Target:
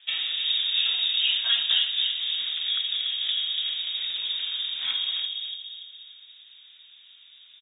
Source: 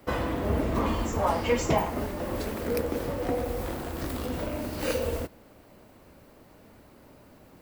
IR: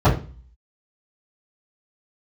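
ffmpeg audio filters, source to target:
-filter_complex "[0:a]equalizer=frequency=2900:width_type=o:width=0.42:gain=-9,asplit=2[link_01][link_02];[link_02]adelay=288,lowpass=frequency=960:poles=1,volume=-3.5dB,asplit=2[link_03][link_04];[link_04]adelay=288,lowpass=frequency=960:poles=1,volume=0.5,asplit=2[link_05][link_06];[link_06]adelay=288,lowpass=frequency=960:poles=1,volume=0.5,asplit=2[link_07][link_08];[link_08]adelay=288,lowpass=frequency=960:poles=1,volume=0.5,asplit=2[link_09][link_10];[link_10]adelay=288,lowpass=frequency=960:poles=1,volume=0.5,asplit=2[link_11][link_12];[link_12]adelay=288,lowpass=frequency=960:poles=1,volume=0.5,asplit=2[link_13][link_14];[link_14]adelay=288,lowpass=frequency=960:poles=1,volume=0.5[link_15];[link_03][link_05][link_07][link_09][link_11][link_13][link_15]amix=inputs=7:normalize=0[link_16];[link_01][link_16]amix=inputs=2:normalize=0,lowpass=frequency=3200:width_type=q:width=0.5098,lowpass=frequency=3200:width_type=q:width=0.6013,lowpass=frequency=3200:width_type=q:width=0.9,lowpass=frequency=3200:width_type=q:width=2.563,afreqshift=-3800"

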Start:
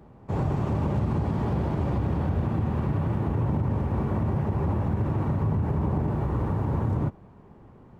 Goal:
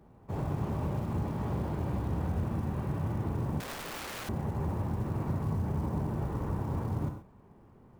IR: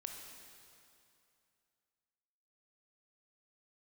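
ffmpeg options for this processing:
-filter_complex "[0:a]acrusher=bits=8:mode=log:mix=0:aa=0.000001[link_01];[1:a]atrim=start_sample=2205,atrim=end_sample=6174[link_02];[link_01][link_02]afir=irnorm=-1:irlink=0,asettb=1/sr,asplit=3[link_03][link_04][link_05];[link_03]atrim=end=3.604[link_06];[link_04]atrim=start=3.6:end=4.29,asetpts=PTS-STARTPTS,afade=type=in:duration=0.004:curve=qsin,afade=type=out:start_time=0.686:duration=0.004:curve=qsin,aeval=exprs='(mod(44.7*val(0)+1,2)-1)/44.7':channel_layout=same[link_07];[link_05]atrim=start=4.286[link_08];[link_06][link_07]acrossfade=duration=0.004:curve1=hsin:curve2=qsin[link_09];[link_09][link_08]acrossfade=duration=0.004:curve1=qsin:curve2=hsin,volume=-2.5dB"

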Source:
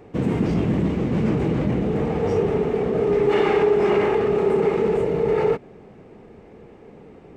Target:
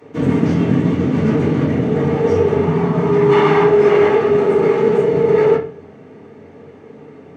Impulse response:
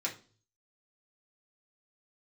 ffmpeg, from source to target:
-filter_complex "[0:a]asettb=1/sr,asplit=3[link_01][link_02][link_03];[link_01]atrim=end=2.614[link_04];[link_02]atrim=start=2.61:end=3.66,asetpts=PTS-STARTPTS,afade=type=in:duration=0.004:curve=qsin,afade=type=out:start_time=1.046:duration=0.004:curve=qsin,equalizer=frequency=160:width_type=o:width=0.33:gain=11,equalizer=frequency=500:width_type=o:width=0.33:gain=-11,equalizer=frequency=1000:width_type=o:width=0.33:gain=11[link_05];[link_03]atrim=start=3.656[link_06];[link_04][link_05]acrossfade=duration=0.004:curve1=hsin:curve2=qsin[link_07];[link_07][link_06]acrossfade=duration=0.004:curve1=qsin:curve2=hsin[link_08];[1:a]atrim=start_sample=2205,asetrate=36603,aresample=44100[link_09];[link_08][link_09]afir=irnorm=-1:irlink=0,volume=1.5dB"

